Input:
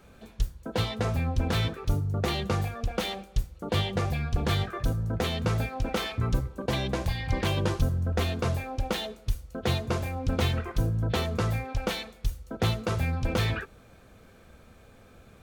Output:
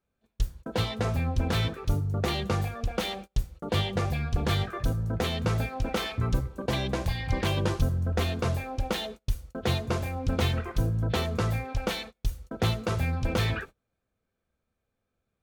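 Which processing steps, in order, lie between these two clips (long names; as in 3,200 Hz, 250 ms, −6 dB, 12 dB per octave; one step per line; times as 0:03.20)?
noise gate −41 dBFS, range −28 dB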